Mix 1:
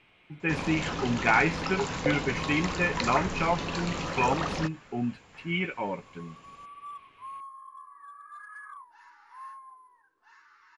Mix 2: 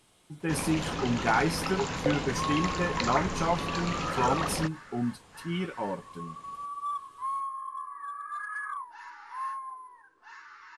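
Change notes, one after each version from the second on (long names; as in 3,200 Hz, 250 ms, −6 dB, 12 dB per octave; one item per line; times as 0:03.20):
speech: remove low-pass with resonance 2,400 Hz, resonance Q 4.5
second sound +9.0 dB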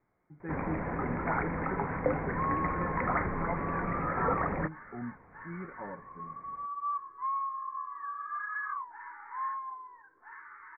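speech −9.5 dB
master: add Butterworth low-pass 2,200 Hz 96 dB per octave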